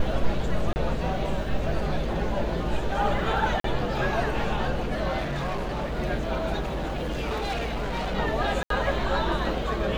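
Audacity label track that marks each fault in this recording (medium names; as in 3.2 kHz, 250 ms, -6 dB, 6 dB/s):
0.730000	0.760000	dropout 29 ms
3.600000	3.640000	dropout 43 ms
5.170000	5.990000	clipped -25.5 dBFS
6.600000	8.150000	clipped -25.5 dBFS
8.630000	8.700000	dropout 73 ms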